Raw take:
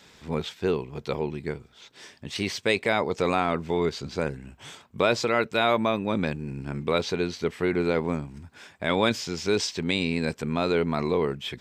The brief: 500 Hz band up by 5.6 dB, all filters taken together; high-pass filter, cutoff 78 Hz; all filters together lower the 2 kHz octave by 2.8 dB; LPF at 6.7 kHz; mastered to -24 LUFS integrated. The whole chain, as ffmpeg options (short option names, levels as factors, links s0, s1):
-af "highpass=78,lowpass=6700,equalizer=f=500:t=o:g=7,equalizer=f=2000:t=o:g=-4,volume=0.944"